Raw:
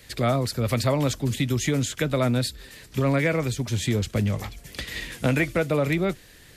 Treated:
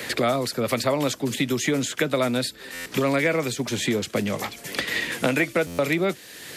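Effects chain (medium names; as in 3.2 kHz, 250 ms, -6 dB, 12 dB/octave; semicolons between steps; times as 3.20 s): high-pass 240 Hz 12 dB/octave; buffer glitch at 2.73/5.66 s, samples 512, times 10; three bands compressed up and down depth 70%; trim +2.5 dB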